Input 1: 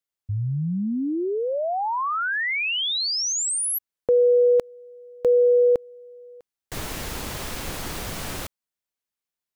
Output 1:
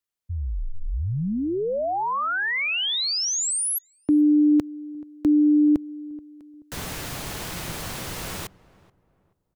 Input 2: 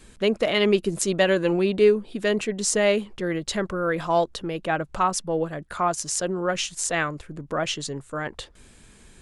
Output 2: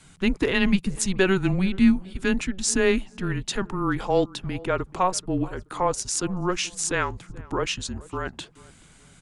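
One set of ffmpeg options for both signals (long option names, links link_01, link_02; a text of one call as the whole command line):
ffmpeg -i in.wav -filter_complex "[0:a]lowshelf=frequency=76:gain=-7.5,afreqshift=-190,asplit=2[link_01][link_02];[link_02]adelay=430,lowpass=frequency=1200:poles=1,volume=-20.5dB,asplit=2[link_03][link_04];[link_04]adelay=430,lowpass=frequency=1200:poles=1,volume=0.34,asplit=2[link_05][link_06];[link_06]adelay=430,lowpass=frequency=1200:poles=1,volume=0.34[link_07];[link_01][link_03][link_05][link_07]amix=inputs=4:normalize=0" out.wav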